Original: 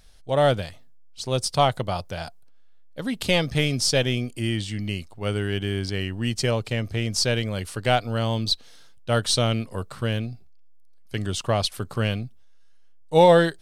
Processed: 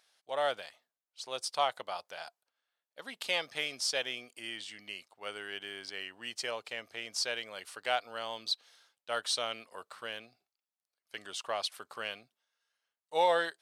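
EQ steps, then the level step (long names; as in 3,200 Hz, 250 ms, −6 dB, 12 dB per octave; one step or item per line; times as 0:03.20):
high-pass filter 760 Hz 12 dB per octave
high-shelf EQ 5,100 Hz −5.5 dB
−6.5 dB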